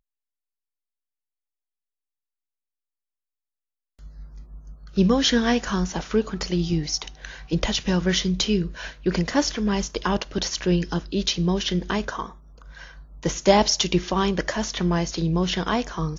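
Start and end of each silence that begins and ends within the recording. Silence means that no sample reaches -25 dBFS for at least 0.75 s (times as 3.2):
12.24–13.23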